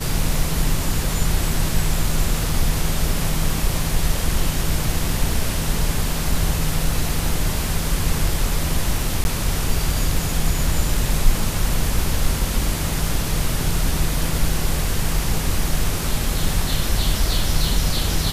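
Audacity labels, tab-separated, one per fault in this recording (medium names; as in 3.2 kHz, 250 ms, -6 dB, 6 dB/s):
9.240000	9.250000	dropout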